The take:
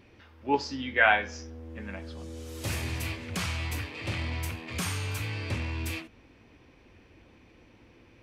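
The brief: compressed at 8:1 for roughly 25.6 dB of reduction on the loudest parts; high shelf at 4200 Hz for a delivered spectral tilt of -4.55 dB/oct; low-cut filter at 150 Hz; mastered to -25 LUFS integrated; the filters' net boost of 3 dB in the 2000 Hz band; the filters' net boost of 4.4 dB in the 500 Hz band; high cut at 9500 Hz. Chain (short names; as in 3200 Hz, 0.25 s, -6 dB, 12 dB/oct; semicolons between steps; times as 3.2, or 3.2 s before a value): HPF 150 Hz; LPF 9500 Hz; bell 500 Hz +5.5 dB; bell 2000 Hz +5 dB; high shelf 4200 Hz -6.5 dB; compressor 8:1, threshold -41 dBFS; gain +19 dB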